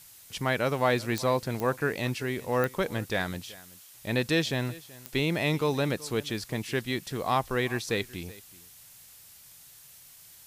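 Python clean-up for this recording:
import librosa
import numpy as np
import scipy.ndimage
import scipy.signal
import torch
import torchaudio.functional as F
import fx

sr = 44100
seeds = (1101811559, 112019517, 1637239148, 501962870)

y = fx.fix_declick_ar(x, sr, threshold=10.0)
y = fx.noise_reduce(y, sr, print_start_s=9.34, print_end_s=9.84, reduce_db=22.0)
y = fx.fix_echo_inverse(y, sr, delay_ms=379, level_db=-20.5)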